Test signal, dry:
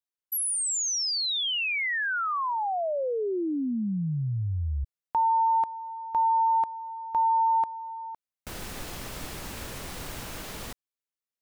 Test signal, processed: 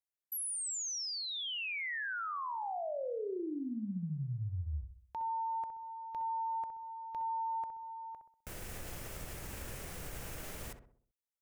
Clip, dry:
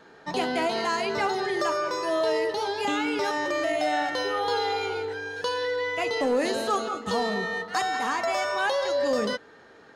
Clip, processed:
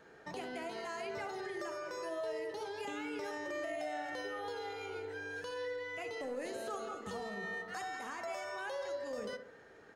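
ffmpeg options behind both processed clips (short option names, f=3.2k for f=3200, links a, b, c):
-filter_complex "[0:a]equalizer=f=250:t=o:w=1:g=-6,equalizer=f=1k:t=o:w=1:g=-6,equalizer=f=4k:t=o:w=1:g=-8,acompressor=threshold=-33dB:ratio=5:attack=0.44:release=209:knee=1:detection=rms,asplit=2[a][b];[b]adelay=64,lowpass=f=1.3k:p=1,volume=-7dB,asplit=2[c][d];[d]adelay=64,lowpass=f=1.3k:p=1,volume=0.5,asplit=2[e][f];[f]adelay=64,lowpass=f=1.3k:p=1,volume=0.5,asplit=2[g][h];[h]adelay=64,lowpass=f=1.3k:p=1,volume=0.5,asplit=2[i][j];[j]adelay=64,lowpass=f=1.3k:p=1,volume=0.5,asplit=2[k][l];[l]adelay=64,lowpass=f=1.3k:p=1,volume=0.5[m];[c][e][g][i][k][m]amix=inputs=6:normalize=0[n];[a][n]amix=inputs=2:normalize=0,volume=-3.5dB"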